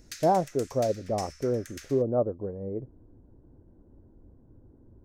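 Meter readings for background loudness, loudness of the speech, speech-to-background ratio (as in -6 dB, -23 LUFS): -45.0 LUFS, -29.0 LUFS, 16.0 dB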